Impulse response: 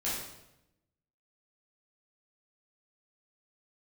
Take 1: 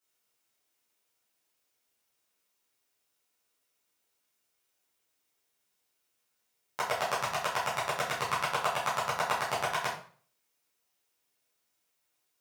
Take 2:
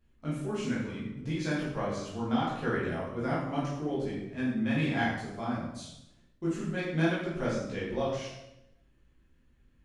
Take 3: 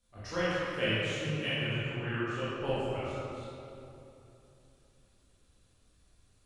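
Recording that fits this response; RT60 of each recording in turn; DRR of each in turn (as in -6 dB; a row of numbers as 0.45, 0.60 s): 2; 0.45, 0.90, 3.0 s; -10.5, -9.0, -11.5 dB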